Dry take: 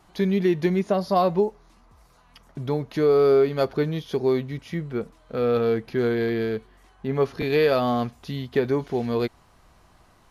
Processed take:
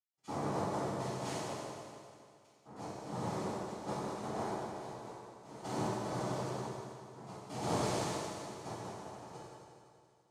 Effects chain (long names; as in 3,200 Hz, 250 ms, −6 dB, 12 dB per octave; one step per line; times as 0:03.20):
centre clipping without the shift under −48.5 dBFS
shaped tremolo saw down 0.54 Hz, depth 85%
cochlear-implant simulation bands 2
convolution reverb RT60 2.3 s, pre-delay 77 ms, DRR −60 dB
level +9.5 dB